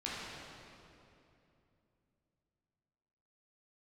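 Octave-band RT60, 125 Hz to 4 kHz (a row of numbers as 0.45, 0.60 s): 3.9, 3.6, 3.1, 2.6, 2.4, 2.1 s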